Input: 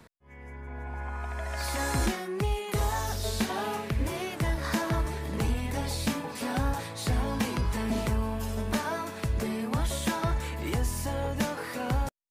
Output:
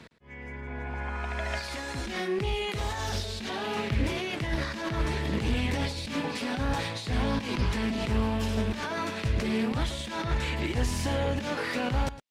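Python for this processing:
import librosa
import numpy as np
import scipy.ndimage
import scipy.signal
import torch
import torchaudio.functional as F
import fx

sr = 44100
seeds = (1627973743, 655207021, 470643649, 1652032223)

p1 = fx.weighting(x, sr, curve='D')
p2 = fx.over_compress(p1, sr, threshold_db=-32.0, ratio=-1.0)
p3 = fx.tilt_eq(p2, sr, slope=-2.5)
p4 = p3 + fx.echo_single(p3, sr, ms=110, db=-15.5, dry=0)
y = fx.doppler_dist(p4, sr, depth_ms=0.23)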